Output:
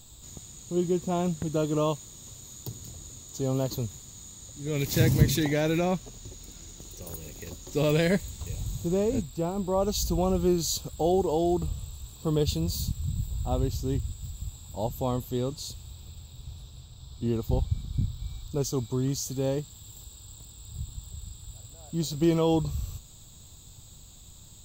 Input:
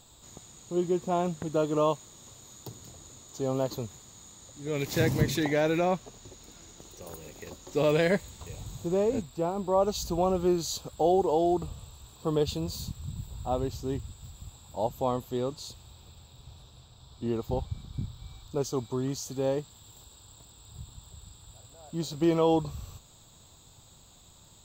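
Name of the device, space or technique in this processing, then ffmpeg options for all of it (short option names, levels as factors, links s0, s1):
smiley-face EQ: -af "lowshelf=f=100:g=7.5,equalizer=f=910:t=o:w=2.8:g=-7.5,highshelf=f=8400:g=5,volume=1.58"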